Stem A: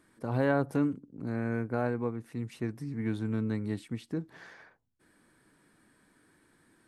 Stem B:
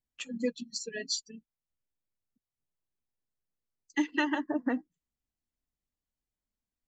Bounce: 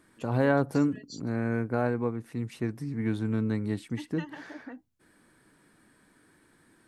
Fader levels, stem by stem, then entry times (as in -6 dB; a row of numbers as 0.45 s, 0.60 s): +3.0 dB, -13.5 dB; 0.00 s, 0.00 s